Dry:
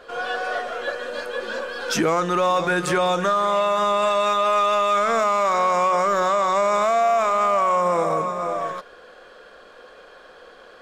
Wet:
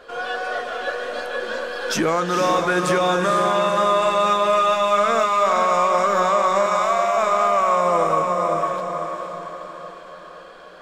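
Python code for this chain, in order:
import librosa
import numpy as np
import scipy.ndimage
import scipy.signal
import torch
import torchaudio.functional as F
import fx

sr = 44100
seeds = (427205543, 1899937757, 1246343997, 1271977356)

y = fx.highpass(x, sr, hz=780.0, slope=12, at=(6.66, 7.17))
y = fx.echo_diffused(y, sr, ms=482, feedback_pct=50, wet_db=-5.0)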